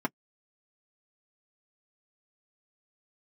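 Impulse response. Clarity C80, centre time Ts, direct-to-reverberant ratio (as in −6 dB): 60.0 dB, 4 ms, −2.0 dB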